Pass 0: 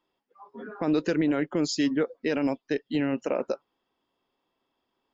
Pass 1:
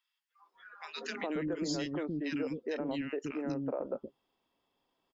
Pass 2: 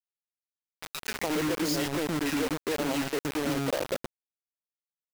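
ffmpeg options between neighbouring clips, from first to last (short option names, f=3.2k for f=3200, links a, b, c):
-filter_complex "[0:a]acrossover=split=320|1400[a][b][c];[b]adelay=420[d];[a]adelay=540[e];[e][d][c]amix=inputs=3:normalize=0,acompressor=threshold=-35dB:ratio=2.5"
-af "acrusher=bits=5:mix=0:aa=0.000001,volume=5dB"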